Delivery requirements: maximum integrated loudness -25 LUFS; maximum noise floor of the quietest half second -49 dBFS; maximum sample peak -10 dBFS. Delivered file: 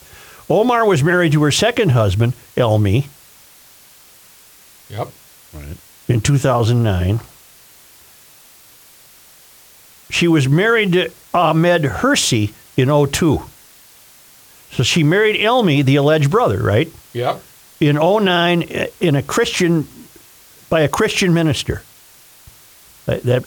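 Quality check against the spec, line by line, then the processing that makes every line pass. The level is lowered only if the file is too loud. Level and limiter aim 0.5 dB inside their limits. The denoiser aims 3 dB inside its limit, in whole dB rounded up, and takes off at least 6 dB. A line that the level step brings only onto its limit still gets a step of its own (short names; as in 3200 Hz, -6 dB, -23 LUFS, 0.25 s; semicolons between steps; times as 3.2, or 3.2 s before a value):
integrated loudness -15.5 LUFS: fail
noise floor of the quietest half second -46 dBFS: fail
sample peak -4.5 dBFS: fail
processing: gain -10 dB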